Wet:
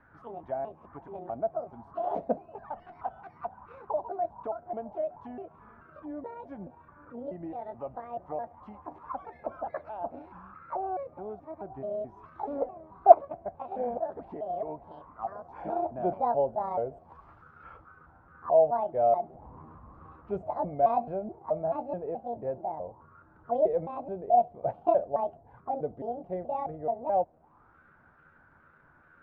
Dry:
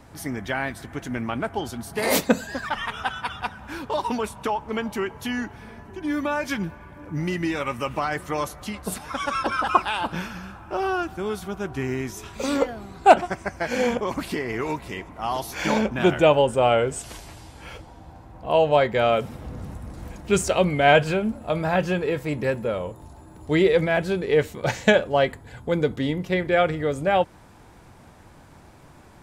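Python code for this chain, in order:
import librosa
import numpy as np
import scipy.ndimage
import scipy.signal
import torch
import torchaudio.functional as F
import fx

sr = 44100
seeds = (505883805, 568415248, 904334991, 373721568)

y = fx.pitch_trill(x, sr, semitones=8.0, every_ms=215)
y = fx.envelope_lowpass(y, sr, base_hz=680.0, top_hz=1600.0, q=7.7, full_db=-25.0, direction='down')
y = F.gain(torch.from_numpy(y), -15.5).numpy()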